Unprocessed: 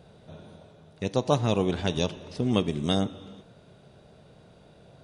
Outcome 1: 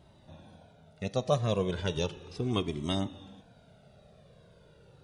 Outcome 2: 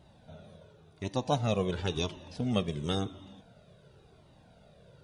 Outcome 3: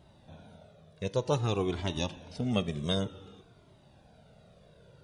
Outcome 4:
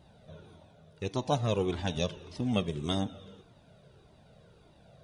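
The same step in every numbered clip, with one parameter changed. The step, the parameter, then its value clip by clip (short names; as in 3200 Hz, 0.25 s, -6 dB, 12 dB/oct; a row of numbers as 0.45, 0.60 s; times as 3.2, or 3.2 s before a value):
cascading flanger, rate: 0.35, 0.94, 0.54, 1.7 Hz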